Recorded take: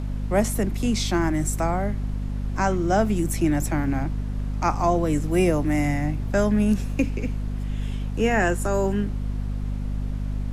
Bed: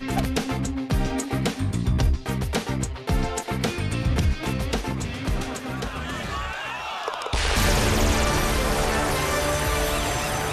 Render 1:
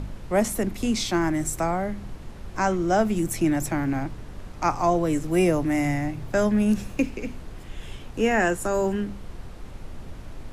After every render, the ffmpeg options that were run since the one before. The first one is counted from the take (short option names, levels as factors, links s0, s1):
-af "bandreject=f=50:t=h:w=4,bandreject=f=100:t=h:w=4,bandreject=f=150:t=h:w=4,bandreject=f=200:t=h:w=4,bandreject=f=250:t=h:w=4"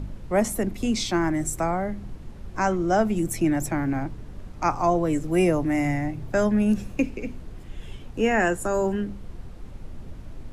-af "afftdn=nr=6:nf=-41"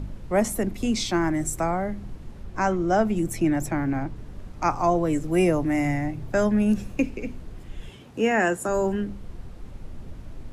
-filter_complex "[0:a]asettb=1/sr,asplit=3[s0][s1][s2];[s0]atrim=end=2.434[s3];[s1]atrim=start=2.43:end=4.16,asetpts=PTS-STARTPTS,afade=t=in:d=0.004:c=qsin,afade=t=out:st=1.726:d=0.004:c=qsin,highshelf=f=5600:g=-4.5[s4];[s2]atrim=start=4.156[s5];[s3][s4]acrossfade=d=0.004:c1=hsin:c2=qsin[s6];[s6][s5]acrossfade=d=0.004:c1=qsin:c2=hsin,asettb=1/sr,asplit=3[s7][s8][s9];[s7]atrim=end=7.894[s10];[s8]atrim=start=7.89:end=8.69,asetpts=PTS-STARTPTS,afade=t=in:d=0.004:c=qsin,afade=t=out:st=0.796:d=0.004:c=qsin,highpass=130[s11];[s9]atrim=start=8.686[s12];[s10][s11]acrossfade=d=0.004:c1=hsin:c2=qsin[s13];[s13][s12]acrossfade=d=0.004:c1=qsin:c2=hsin"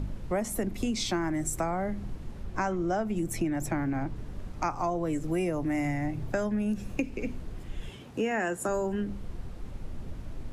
-af "acompressor=threshold=0.0501:ratio=6"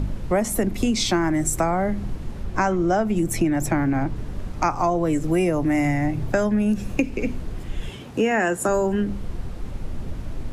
-af "volume=2.66"